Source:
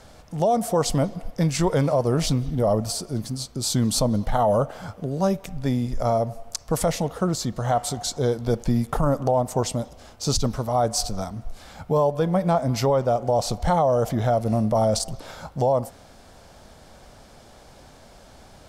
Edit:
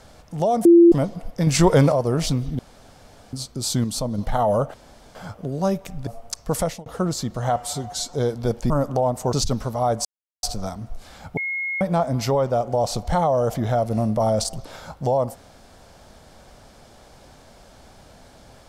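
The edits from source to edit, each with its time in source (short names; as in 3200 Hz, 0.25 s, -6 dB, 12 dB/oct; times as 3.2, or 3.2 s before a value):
0.65–0.92 bleep 341 Hz -7 dBFS
1.47–1.92 gain +6 dB
2.59–3.33 room tone
3.84–4.18 gain -4.5 dB
4.74 insert room tone 0.41 s
5.66–6.29 cut
6.83–7.08 fade out
7.78–8.16 stretch 1.5×
8.73–9.01 cut
9.64–10.26 cut
10.98 insert silence 0.38 s
11.92–12.36 bleep 2160 Hz -23.5 dBFS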